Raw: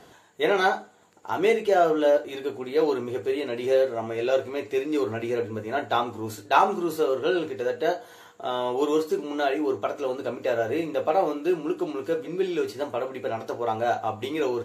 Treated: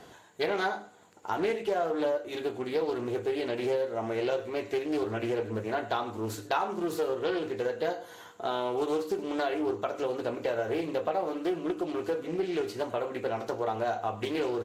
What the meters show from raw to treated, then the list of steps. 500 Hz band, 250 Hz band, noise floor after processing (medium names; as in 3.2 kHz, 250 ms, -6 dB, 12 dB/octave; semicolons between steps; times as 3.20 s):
-5.5 dB, -4.0 dB, -52 dBFS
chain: compression 4:1, threshold -27 dBFS, peak gain reduction 11.5 dB; delay 102 ms -17.5 dB; loudspeaker Doppler distortion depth 0.26 ms